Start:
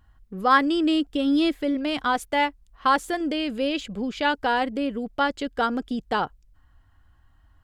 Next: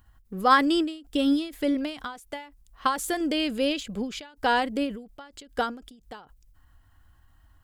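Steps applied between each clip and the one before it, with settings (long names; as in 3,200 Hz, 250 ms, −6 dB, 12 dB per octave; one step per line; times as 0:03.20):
high-shelf EQ 6,500 Hz +12 dB
every ending faded ahead of time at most 120 dB per second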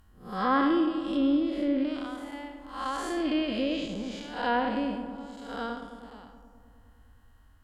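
spectrum smeared in time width 222 ms
treble cut that deepens with the level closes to 2,700 Hz, closed at −24.5 dBFS
feedback echo with a low-pass in the loop 104 ms, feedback 79%, low-pass 2,500 Hz, level −11 dB
level +1.5 dB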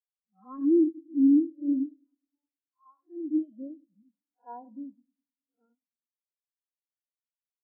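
wave folding −21 dBFS
every bin expanded away from the loudest bin 4 to 1
level +7 dB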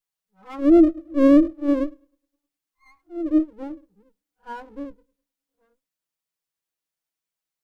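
lower of the sound and its delayed copy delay 6.2 ms
level +8.5 dB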